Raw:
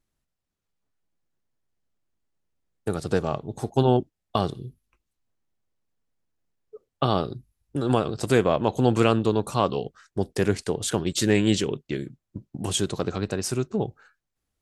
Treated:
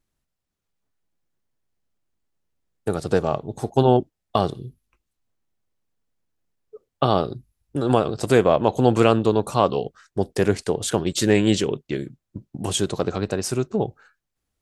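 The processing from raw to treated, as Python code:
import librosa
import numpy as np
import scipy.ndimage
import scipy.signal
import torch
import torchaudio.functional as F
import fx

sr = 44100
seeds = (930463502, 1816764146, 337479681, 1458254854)

y = fx.dynamic_eq(x, sr, hz=630.0, q=0.93, threshold_db=-35.0, ratio=4.0, max_db=4)
y = y * librosa.db_to_amplitude(1.5)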